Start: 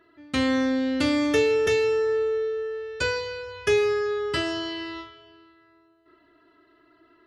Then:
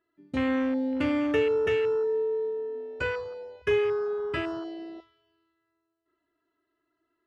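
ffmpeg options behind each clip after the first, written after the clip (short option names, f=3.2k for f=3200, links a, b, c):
-af "afwtdn=0.0316,volume=-3dB"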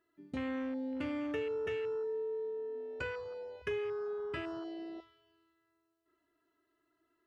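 -af "acompressor=threshold=-44dB:ratio=2"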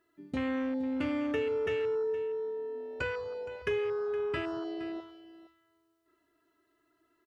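-af "aecho=1:1:467:0.168,volume=5dB"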